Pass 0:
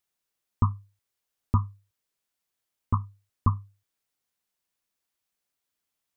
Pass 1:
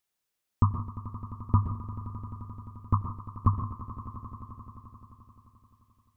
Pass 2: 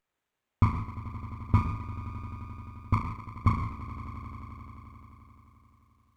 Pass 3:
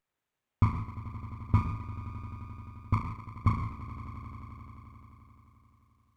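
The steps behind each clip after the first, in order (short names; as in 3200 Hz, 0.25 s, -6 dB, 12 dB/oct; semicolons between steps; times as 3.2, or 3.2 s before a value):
swelling echo 87 ms, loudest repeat 5, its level -16.5 dB; reverb RT60 0.30 s, pre-delay 0.116 s, DRR 9 dB
flutter echo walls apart 6.2 m, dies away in 0.46 s; running maximum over 9 samples
bell 130 Hz +4 dB 0.62 oct; gain -3 dB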